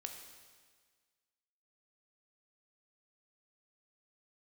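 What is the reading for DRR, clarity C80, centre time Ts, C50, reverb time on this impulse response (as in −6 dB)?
4.0 dB, 7.0 dB, 37 ms, 6.0 dB, 1.6 s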